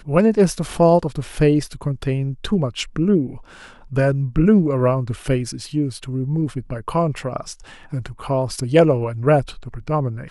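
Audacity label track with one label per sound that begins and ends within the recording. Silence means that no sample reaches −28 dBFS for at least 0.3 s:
3.920000	7.530000	sound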